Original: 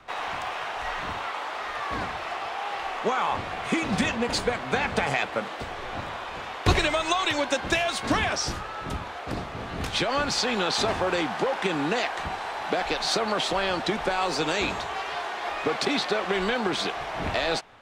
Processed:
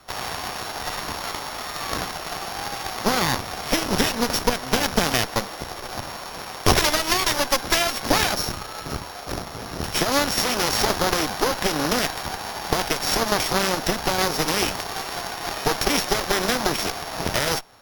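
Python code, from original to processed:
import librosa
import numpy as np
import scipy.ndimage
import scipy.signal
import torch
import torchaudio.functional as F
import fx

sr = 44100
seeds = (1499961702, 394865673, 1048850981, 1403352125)

y = np.r_[np.sort(x[:len(x) // 8 * 8].reshape(-1, 8), axis=1).ravel(), x[len(x) // 8 * 8:]]
y = fx.cheby_harmonics(y, sr, harmonics=(4, 8), levels_db=(-7, -16), full_scale_db=-7.0)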